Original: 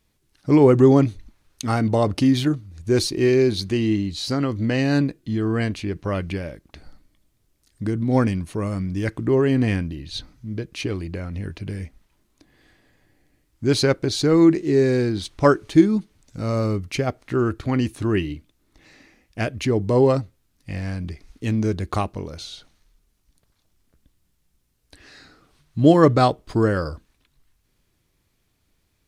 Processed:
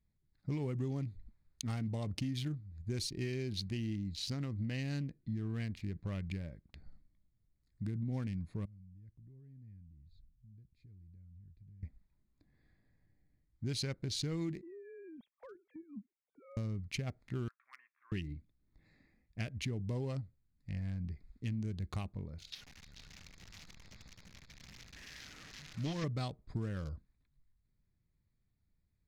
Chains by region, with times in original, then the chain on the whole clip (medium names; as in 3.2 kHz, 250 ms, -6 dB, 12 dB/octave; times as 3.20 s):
8.65–11.83 s: amplifier tone stack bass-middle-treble 10-0-1 + compression 2.5:1, threshold -47 dBFS
14.61–16.57 s: formants replaced by sine waves + compression 8:1, threshold -29 dBFS
17.48–18.12 s: companding laws mixed up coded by A + Chebyshev band-pass 1.1–2.9 kHz, order 3 + distance through air 420 m
22.52–26.04 s: one-bit delta coder 32 kbps, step -31 dBFS + tilt EQ +2.5 dB/octave + multi-tap echo 299/435/519 ms -11.5/-6.5/-17 dB
whole clip: local Wiener filter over 15 samples; high-order bell 650 Hz -11 dB 2.8 oct; compression, threshold -25 dBFS; trim -8.5 dB